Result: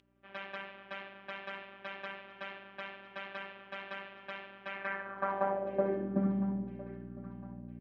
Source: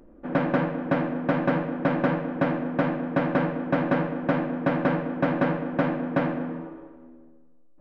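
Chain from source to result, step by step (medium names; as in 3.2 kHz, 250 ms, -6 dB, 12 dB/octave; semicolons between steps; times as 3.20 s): robot voice 196 Hz; in parallel at -8 dB: hard clipper -17 dBFS, distortion -13 dB; on the sum: hum 60 Hz, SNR 11 dB; band-pass sweep 3.1 kHz -> 210 Hz, 4.63–6.31 s; feedback delay 1008 ms, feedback 37%, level -18 dB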